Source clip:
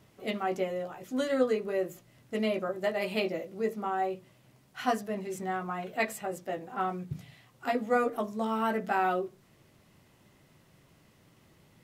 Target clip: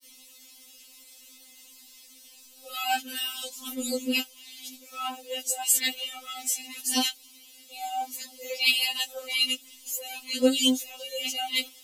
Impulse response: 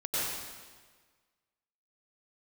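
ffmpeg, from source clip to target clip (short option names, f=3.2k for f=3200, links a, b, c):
-af "areverse,aexciter=amount=8.3:drive=6.5:freq=2.5k,adynamicequalizer=threshold=0.00794:dfrequency=3000:dqfactor=4.3:tfrequency=3000:tqfactor=4.3:attack=5:release=100:ratio=0.375:range=3.5:mode=boostabove:tftype=bell,afftfilt=real='re*3.46*eq(mod(b,12),0)':imag='im*3.46*eq(mod(b,12),0)':win_size=2048:overlap=0.75"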